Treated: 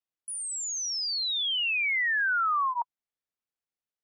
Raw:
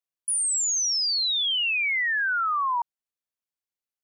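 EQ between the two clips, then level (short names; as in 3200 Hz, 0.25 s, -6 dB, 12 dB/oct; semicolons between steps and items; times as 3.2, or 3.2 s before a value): LPF 2800 Hz 6 dB/oct; notch 1000 Hz, Q 15; 0.0 dB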